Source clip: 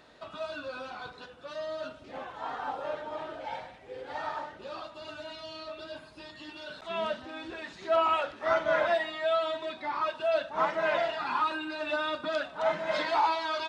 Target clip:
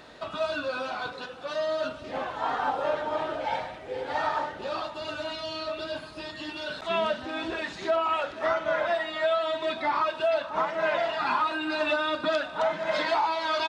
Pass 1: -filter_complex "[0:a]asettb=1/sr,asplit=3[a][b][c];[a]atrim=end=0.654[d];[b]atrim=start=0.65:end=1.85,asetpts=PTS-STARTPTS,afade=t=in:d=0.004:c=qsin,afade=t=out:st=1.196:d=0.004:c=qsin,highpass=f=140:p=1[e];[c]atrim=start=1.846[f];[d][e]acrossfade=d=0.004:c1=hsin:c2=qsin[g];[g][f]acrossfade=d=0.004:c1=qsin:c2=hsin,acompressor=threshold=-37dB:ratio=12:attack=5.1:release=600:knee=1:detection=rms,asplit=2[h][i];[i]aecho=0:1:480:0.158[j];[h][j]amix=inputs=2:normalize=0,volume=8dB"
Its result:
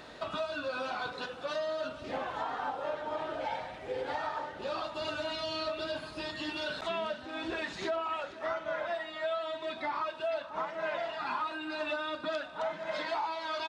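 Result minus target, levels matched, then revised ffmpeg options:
compressor: peak gain reduction +8 dB
-filter_complex "[0:a]asettb=1/sr,asplit=3[a][b][c];[a]atrim=end=0.654[d];[b]atrim=start=0.65:end=1.85,asetpts=PTS-STARTPTS,afade=t=in:d=0.004:c=qsin,afade=t=out:st=1.196:d=0.004:c=qsin,highpass=f=140:p=1[e];[c]atrim=start=1.846[f];[d][e]acrossfade=d=0.004:c1=hsin:c2=qsin[g];[g][f]acrossfade=d=0.004:c1=qsin:c2=hsin,acompressor=threshold=-28dB:ratio=12:attack=5.1:release=600:knee=1:detection=rms,asplit=2[h][i];[i]aecho=0:1:480:0.158[j];[h][j]amix=inputs=2:normalize=0,volume=8dB"

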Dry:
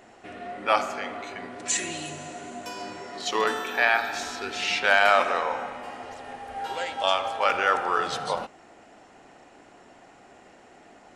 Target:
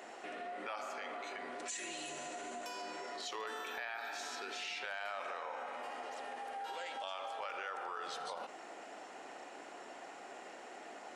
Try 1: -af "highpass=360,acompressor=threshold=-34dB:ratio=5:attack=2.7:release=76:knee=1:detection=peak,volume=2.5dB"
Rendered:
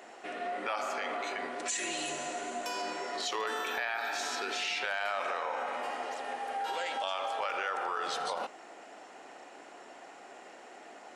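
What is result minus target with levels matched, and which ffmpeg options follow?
compressor: peak gain reduction -8.5 dB
-af "highpass=360,acompressor=threshold=-44.5dB:ratio=5:attack=2.7:release=76:knee=1:detection=peak,volume=2.5dB"

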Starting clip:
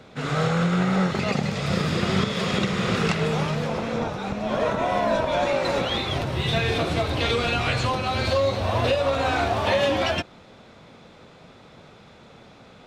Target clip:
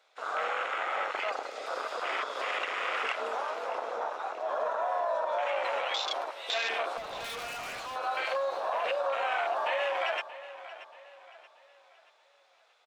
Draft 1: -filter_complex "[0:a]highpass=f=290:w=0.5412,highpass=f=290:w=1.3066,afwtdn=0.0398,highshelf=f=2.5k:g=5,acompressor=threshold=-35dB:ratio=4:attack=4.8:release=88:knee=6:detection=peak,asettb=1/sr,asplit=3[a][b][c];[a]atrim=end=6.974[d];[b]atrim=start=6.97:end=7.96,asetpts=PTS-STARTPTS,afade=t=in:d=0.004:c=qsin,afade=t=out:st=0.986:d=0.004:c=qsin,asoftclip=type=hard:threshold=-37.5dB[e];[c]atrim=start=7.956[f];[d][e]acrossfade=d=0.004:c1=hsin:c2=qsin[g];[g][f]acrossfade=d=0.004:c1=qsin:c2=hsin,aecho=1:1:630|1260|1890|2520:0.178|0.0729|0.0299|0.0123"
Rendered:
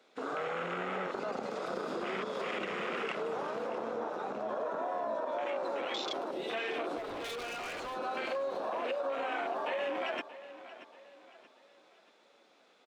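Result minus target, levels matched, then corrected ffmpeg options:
250 Hz band +16.5 dB; compressor: peak gain reduction +7 dB
-filter_complex "[0:a]highpass=f=600:w=0.5412,highpass=f=600:w=1.3066,afwtdn=0.0398,highshelf=f=2.5k:g=5,acompressor=threshold=-28dB:ratio=4:attack=4.8:release=88:knee=6:detection=peak,asettb=1/sr,asplit=3[a][b][c];[a]atrim=end=6.974[d];[b]atrim=start=6.97:end=7.96,asetpts=PTS-STARTPTS,afade=t=in:d=0.004:c=qsin,afade=t=out:st=0.986:d=0.004:c=qsin,asoftclip=type=hard:threshold=-37.5dB[e];[c]atrim=start=7.956[f];[d][e]acrossfade=d=0.004:c1=hsin:c2=qsin[g];[g][f]acrossfade=d=0.004:c1=qsin:c2=hsin,aecho=1:1:630|1260|1890|2520:0.178|0.0729|0.0299|0.0123"

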